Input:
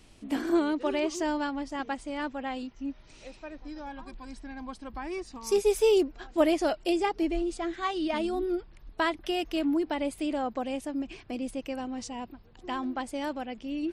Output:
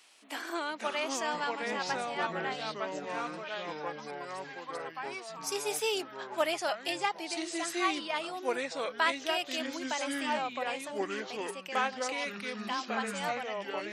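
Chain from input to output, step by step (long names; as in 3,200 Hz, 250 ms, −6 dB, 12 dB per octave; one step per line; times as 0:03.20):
high-pass filter 920 Hz 12 dB per octave
delay with pitch and tempo change per echo 415 ms, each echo −4 semitones, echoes 3
level +2 dB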